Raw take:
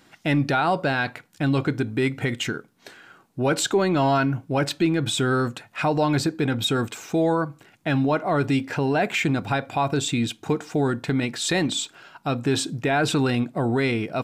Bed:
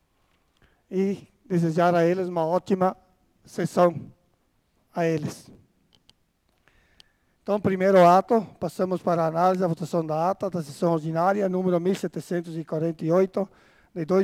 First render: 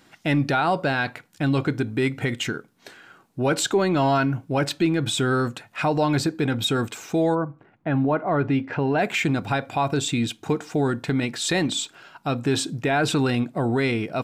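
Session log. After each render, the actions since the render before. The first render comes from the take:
0:07.34–0:08.97: low-pass filter 1,100 Hz → 2,900 Hz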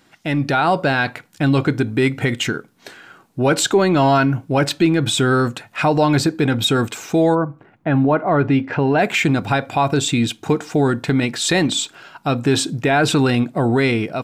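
automatic gain control gain up to 6 dB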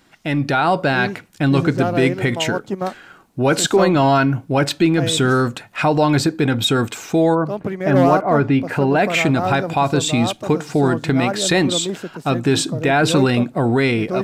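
mix in bed −1.5 dB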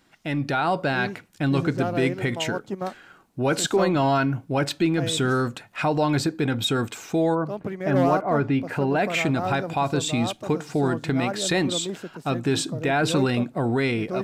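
level −6.5 dB

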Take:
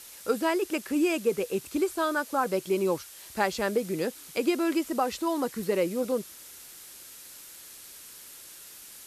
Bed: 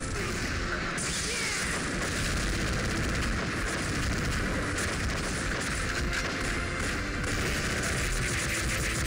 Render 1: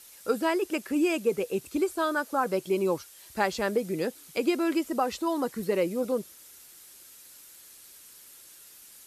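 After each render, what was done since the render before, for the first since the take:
broadband denoise 6 dB, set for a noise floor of −48 dBFS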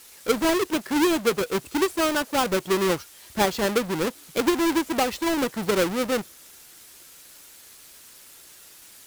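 each half-wave held at its own peak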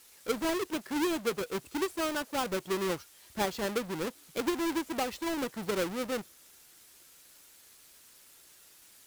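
level −9 dB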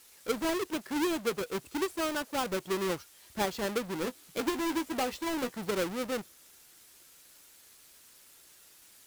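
0:03.94–0:05.59: double-tracking delay 16 ms −9 dB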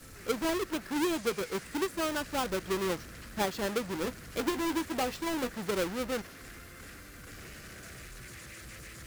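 mix in bed −18 dB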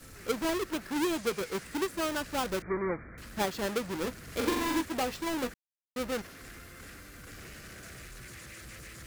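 0:02.62–0:03.18: linear-phase brick-wall low-pass 2,400 Hz
0:04.23–0:04.81: flutter between parallel walls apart 7.5 metres, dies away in 0.8 s
0:05.54–0:05.96: silence

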